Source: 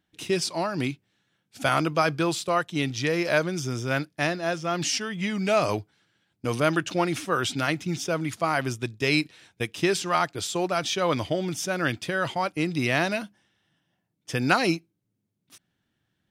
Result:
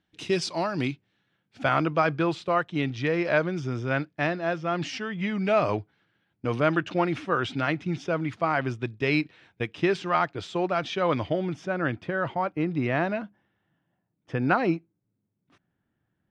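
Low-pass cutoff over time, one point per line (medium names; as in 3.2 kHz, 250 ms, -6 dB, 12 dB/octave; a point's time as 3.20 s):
0.66 s 5.4 kHz
1.65 s 2.6 kHz
11.27 s 2.6 kHz
11.83 s 1.6 kHz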